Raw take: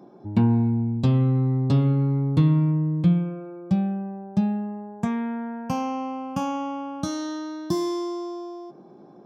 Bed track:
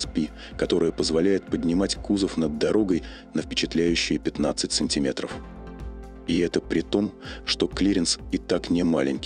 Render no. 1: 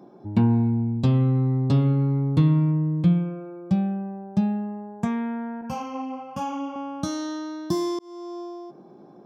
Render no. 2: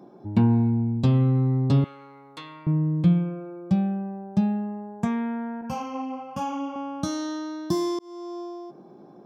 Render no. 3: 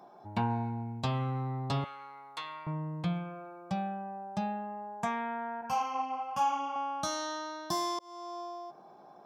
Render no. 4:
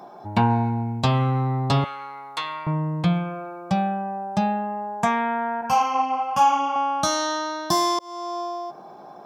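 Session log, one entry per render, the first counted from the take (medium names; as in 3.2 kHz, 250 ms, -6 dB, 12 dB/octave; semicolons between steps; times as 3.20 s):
5.61–6.76 s: three-phase chorus; 7.99–8.40 s: fade in
1.84–2.67 s: high-pass 1.1 kHz
resonant low shelf 480 Hz -12.5 dB, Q 1.5; band-stop 540 Hz, Q 12
trim +11.5 dB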